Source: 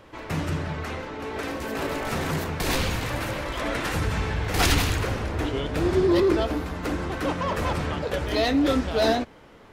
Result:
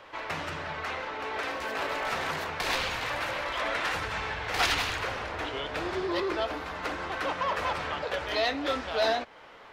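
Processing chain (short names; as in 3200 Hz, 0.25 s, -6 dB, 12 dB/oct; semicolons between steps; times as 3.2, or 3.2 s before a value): in parallel at +3 dB: compressor, threshold -32 dBFS, peak gain reduction 15 dB; on the sum: three-band isolator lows -16 dB, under 540 Hz, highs -12 dB, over 5400 Hz; gain -3.5 dB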